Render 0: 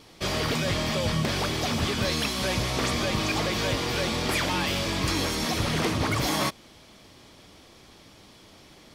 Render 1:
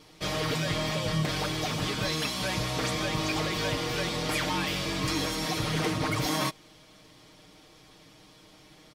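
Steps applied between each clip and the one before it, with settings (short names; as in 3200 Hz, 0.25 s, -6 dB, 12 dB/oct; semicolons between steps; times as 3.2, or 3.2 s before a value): comb 6.5 ms; gain -4.5 dB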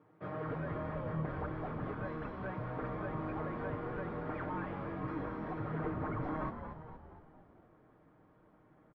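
Chebyshev band-pass 100–1500 Hz, order 3; on a send: frequency-shifting echo 0.233 s, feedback 55%, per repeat -78 Hz, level -8 dB; on the sum: gain -8 dB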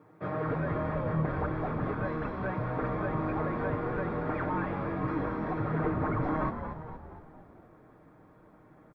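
notch 3000 Hz, Q 9.6; gain +7.5 dB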